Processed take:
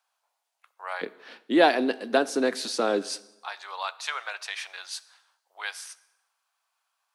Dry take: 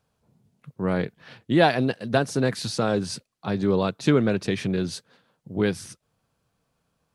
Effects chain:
Butterworth high-pass 730 Hz 36 dB per octave, from 0:01.01 250 Hz, from 0:03.01 790 Hz
dense smooth reverb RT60 0.99 s, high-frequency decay 0.85×, DRR 16.5 dB

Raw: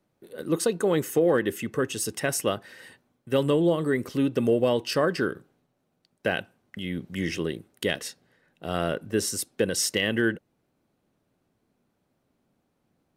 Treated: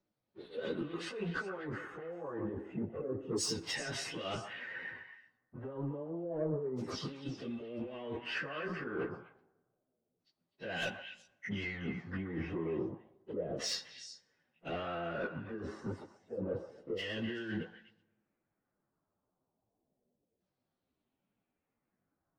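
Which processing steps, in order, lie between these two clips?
noise gate −52 dBFS, range −7 dB
high-shelf EQ 5,600 Hz −7.5 dB
compressor whose output falls as the input rises −32 dBFS, ratio −1
leveller curve on the samples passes 1
auto-filter low-pass saw down 0.5 Hz 440–5,800 Hz
soft clipping −16 dBFS, distortion −19 dB
time stretch by phase vocoder 1.7×
pitch vibrato 10 Hz 25 cents
echo through a band-pass that steps 125 ms, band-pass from 960 Hz, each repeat 1.4 octaves, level −5 dB
dense smooth reverb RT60 1.2 s, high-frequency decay 0.6×, DRR 19.5 dB
level −7.5 dB

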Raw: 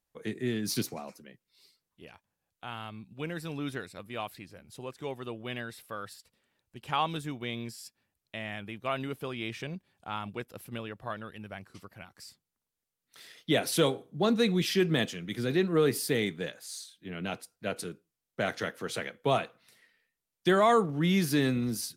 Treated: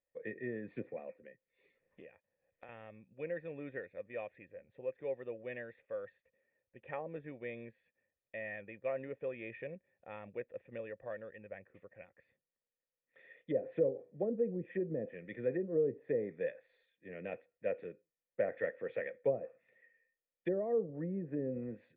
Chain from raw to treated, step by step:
treble cut that deepens with the level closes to 420 Hz, closed at −22.5 dBFS
formant resonators in series e
0:01.22–0:02.69: multiband upward and downward compressor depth 100%
level +6 dB

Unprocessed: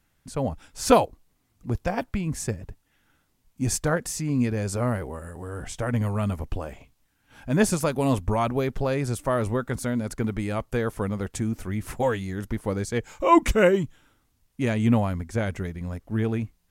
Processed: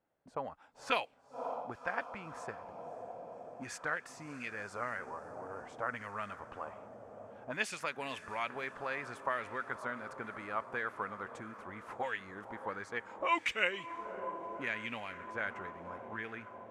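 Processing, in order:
feedback delay with all-pass diffusion 560 ms, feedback 73%, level −15.5 dB
envelope filter 580–2,500 Hz, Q 2.1, up, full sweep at −18 dBFS

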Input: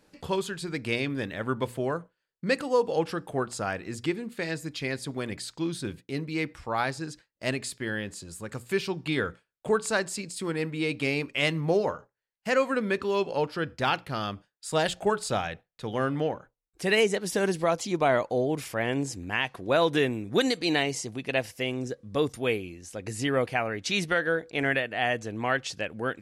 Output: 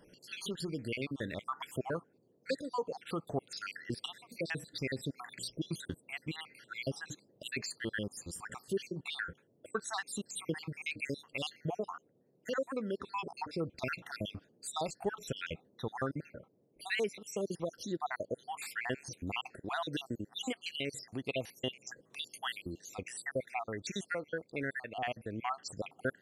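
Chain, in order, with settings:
time-frequency cells dropped at random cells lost 66%
downward compressor 1.5 to 1, threshold −38 dBFS, peak gain reduction 7 dB
noise in a band 110–530 Hz −70 dBFS
speech leveller within 3 dB 0.5 s
level −1 dB

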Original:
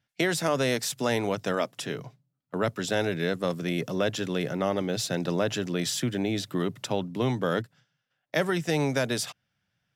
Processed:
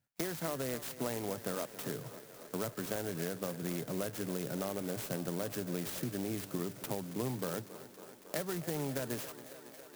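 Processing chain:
downward compressor, threshold −29 dBFS, peak gain reduction 9 dB
high-frequency loss of the air 66 metres
feedback echo with a high-pass in the loop 276 ms, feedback 84%, high-pass 190 Hz, level −14 dB
converter with an unsteady clock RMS 0.096 ms
level −4 dB

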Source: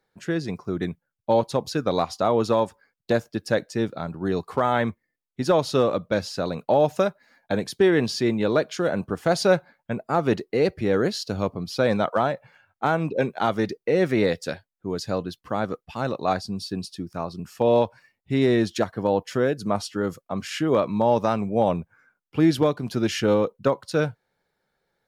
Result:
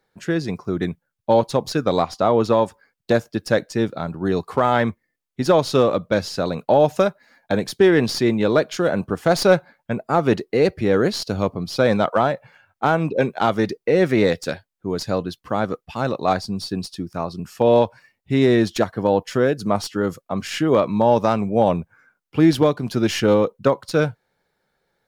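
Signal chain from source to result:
stylus tracing distortion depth 0.03 ms
0:01.96–0:02.63: high-shelf EQ 4,900 Hz −6.5 dB
level +4 dB

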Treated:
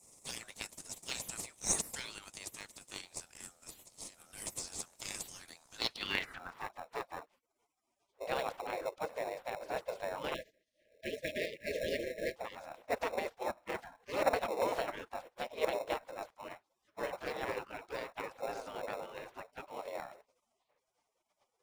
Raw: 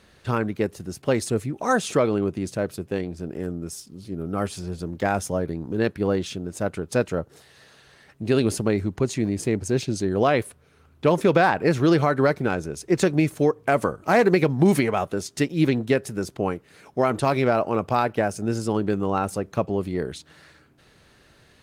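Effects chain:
gate on every frequency bin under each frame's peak −25 dB weak
band-pass filter sweep 7,800 Hz → 520 Hz, 0:05.70–0:06.79
in parallel at −8 dB: decimation without filtering 28×
0:10.34–0:12.36: on the sum: linear-phase brick-wall band-stop 660–1,600 Hz
level +14.5 dB

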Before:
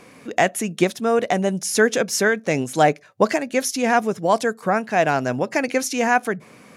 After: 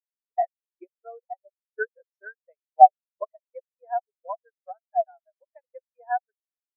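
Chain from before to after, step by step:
loose part that buzzes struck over −24 dBFS, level −17 dBFS
high-pass filter 670 Hz 12 dB per octave
high-shelf EQ 5,200 Hz −11 dB
transient designer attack +6 dB, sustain −9 dB
every bin expanded away from the loudest bin 4 to 1
level −1 dB

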